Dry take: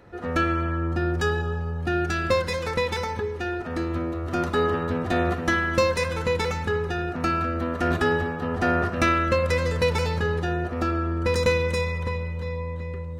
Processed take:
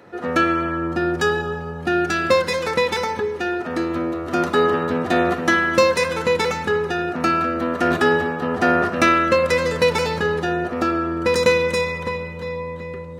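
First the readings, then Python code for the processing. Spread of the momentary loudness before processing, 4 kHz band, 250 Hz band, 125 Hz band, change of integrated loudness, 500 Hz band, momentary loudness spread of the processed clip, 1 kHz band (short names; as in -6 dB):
7 LU, +6.0 dB, +5.0 dB, -3.5 dB, +5.0 dB, +6.0 dB, 8 LU, +6.0 dB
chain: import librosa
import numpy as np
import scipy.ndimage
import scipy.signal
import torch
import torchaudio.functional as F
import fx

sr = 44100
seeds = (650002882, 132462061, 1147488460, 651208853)

y = scipy.signal.sosfilt(scipy.signal.butter(2, 180.0, 'highpass', fs=sr, output='sos'), x)
y = y * 10.0 ** (6.0 / 20.0)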